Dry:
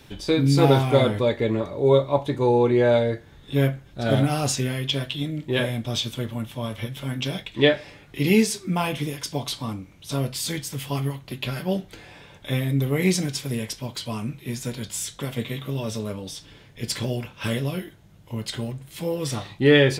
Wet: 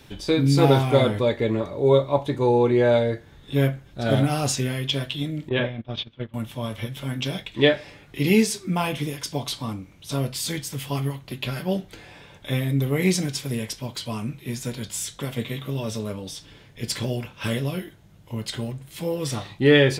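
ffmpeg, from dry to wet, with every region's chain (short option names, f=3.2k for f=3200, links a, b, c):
-filter_complex "[0:a]asettb=1/sr,asplit=3[a][b][c];[a]atrim=end=5.494[d];[b]atrim=start=5.49:end=6.34,asetpts=PTS-STARTPTS,afade=t=in:d=0.004:c=qsin,afade=t=out:st=0.846:d=0.004:c=qsin,agate=range=-18dB:threshold=-27dB:ratio=16:release=100:detection=peak,lowpass=f=3.5k:w=0.5412,lowpass=f=3.5k:w=1.3066[e];[c]atrim=start=6.336[f];[d][e]acrossfade=d=0.004:c1=hsin:c2=qsin[g];[g][f]acrossfade=d=0.004:c1=qsin:c2=hsin"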